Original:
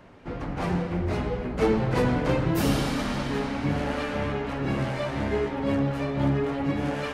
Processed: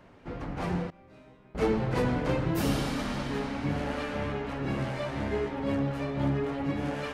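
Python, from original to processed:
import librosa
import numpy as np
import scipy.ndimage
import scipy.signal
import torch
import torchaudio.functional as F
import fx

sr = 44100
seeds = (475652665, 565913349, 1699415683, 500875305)

y = fx.resonator_bank(x, sr, root=48, chord='minor', decay_s=0.76, at=(0.9, 1.55))
y = y * 10.0 ** (-4.0 / 20.0)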